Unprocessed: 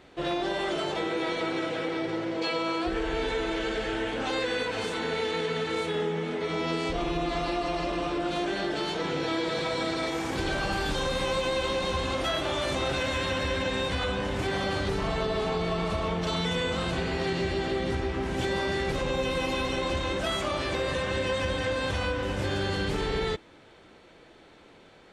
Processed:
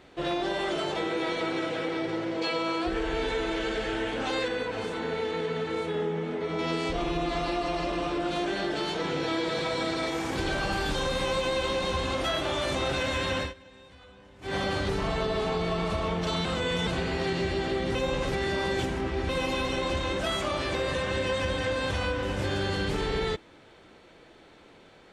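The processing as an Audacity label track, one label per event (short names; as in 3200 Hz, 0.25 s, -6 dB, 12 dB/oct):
4.480000	6.590000	high shelf 2000 Hz -8 dB
13.400000	14.550000	dip -23 dB, fades 0.14 s
16.450000	16.870000	reverse
17.950000	19.290000	reverse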